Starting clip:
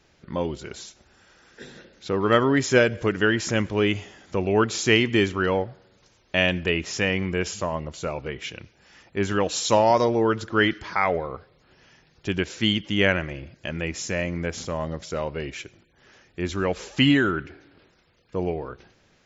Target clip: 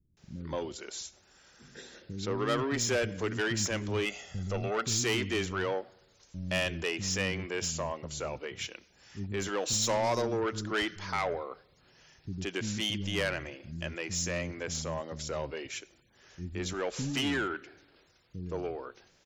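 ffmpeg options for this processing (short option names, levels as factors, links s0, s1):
-filter_complex "[0:a]bass=f=250:g=0,treble=f=4000:g=8,asoftclip=type=tanh:threshold=0.126,asettb=1/sr,asplit=3[s0][s1][s2];[s0]atrim=end=3.884[s3];[s1]atrim=start=3.88:end=4.68,asetpts=PTS-STARTPTS,afade=t=in:d=0.004:c=qsin,afade=t=out:st=0.796:d=0.004:c=qsin,aecho=1:1:1.5:0.59,atrim=end_sample=35280[s4];[s2]atrim=start=4.676[s5];[s3][s4]acrossfade=d=0.004:c1=hsin:c2=qsin[s6];[s6][s5]acrossfade=d=0.004:c1=qsin:c2=hsin,acrossover=split=250[s7][s8];[s8]adelay=170[s9];[s7][s9]amix=inputs=2:normalize=0,volume=0.531"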